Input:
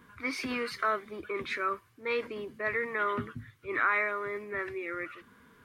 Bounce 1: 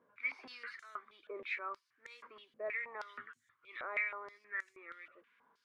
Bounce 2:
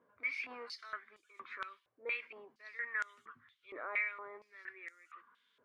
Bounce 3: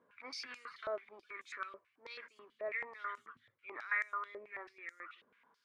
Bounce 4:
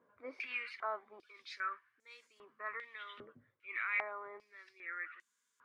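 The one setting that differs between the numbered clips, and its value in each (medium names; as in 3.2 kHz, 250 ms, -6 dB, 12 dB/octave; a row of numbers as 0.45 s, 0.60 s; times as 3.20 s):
step-sequenced band-pass, rate: 6.3 Hz, 4.3 Hz, 9.2 Hz, 2.5 Hz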